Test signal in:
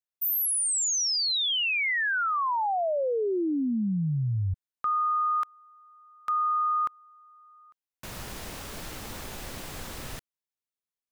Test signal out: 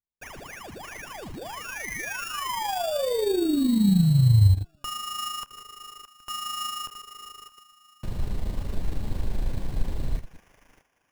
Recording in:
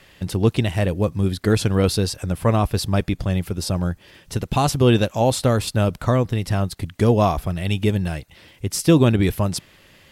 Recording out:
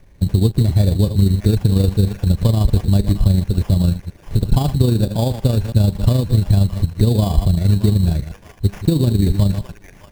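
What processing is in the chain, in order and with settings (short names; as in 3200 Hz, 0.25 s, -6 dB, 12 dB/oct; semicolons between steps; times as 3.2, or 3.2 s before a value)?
reverse delay 0.108 s, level -12 dB; AM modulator 26 Hz, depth 30%; high shelf 10000 Hz +10 dB; resonator 200 Hz, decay 0.4 s, harmonics all, mix 40%; on a send: thin delay 0.618 s, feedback 36%, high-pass 1700 Hz, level -5.5 dB; on the sum: compressor 6:1, threshold -24 dBFS; in parallel at -5 dB: bit-crush 7-bit; on the sum: tilt -4.5 dB/oct; sample-rate reducer 4100 Hz, jitter 0%; notch 1300 Hz, Q 7.8; gain -1.5 dB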